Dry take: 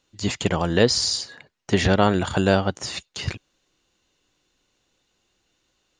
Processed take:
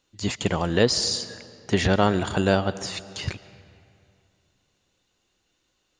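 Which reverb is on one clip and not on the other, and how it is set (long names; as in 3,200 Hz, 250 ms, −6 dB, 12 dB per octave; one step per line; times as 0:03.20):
comb and all-pass reverb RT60 2.5 s, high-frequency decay 0.7×, pre-delay 95 ms, DRR 16 dB
level −2 dB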